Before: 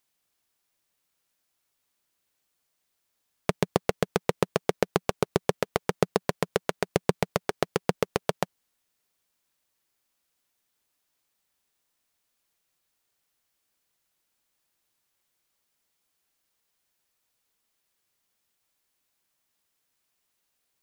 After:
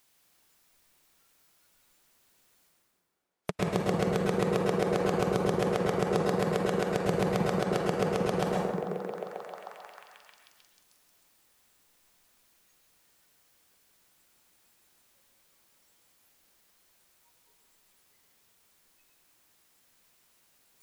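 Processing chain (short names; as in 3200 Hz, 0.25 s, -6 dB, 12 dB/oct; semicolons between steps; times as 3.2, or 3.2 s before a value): reverse; upward compressor, threshold -29 dBFS; reverse; spectral noise reduction 17 dB; delay with a stepping band-pass 0.311 s, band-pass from 210 Hz, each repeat 0.7 oct, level -4 dB; plate-style reverb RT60 1.5 s, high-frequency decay 0.45×, pre-delay 95 ms, DRR 2 dB; limiter -11.5 dBFS, peak gain reduction 8 dB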